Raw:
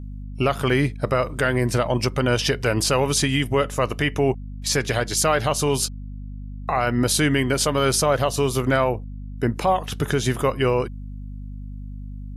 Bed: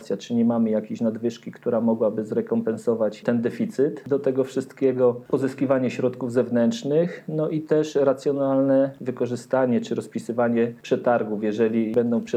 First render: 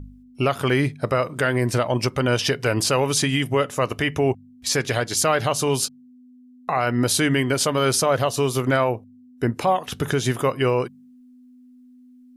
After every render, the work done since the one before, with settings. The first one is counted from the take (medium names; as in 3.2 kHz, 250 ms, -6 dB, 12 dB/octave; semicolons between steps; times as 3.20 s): de-hum 50 Hz, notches 4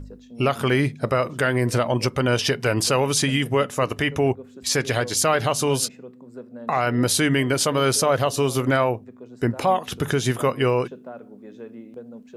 add bed -18.5 dB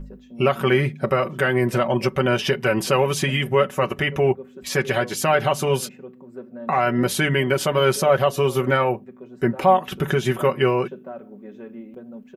high-order bell 6.3 kHz -9 dB; comb 5.3 ms, depth 71%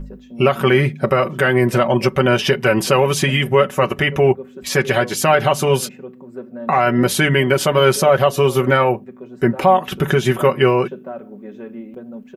trim +5 dB; peak limiter -3 dBFS, peak gain reduction 3 dB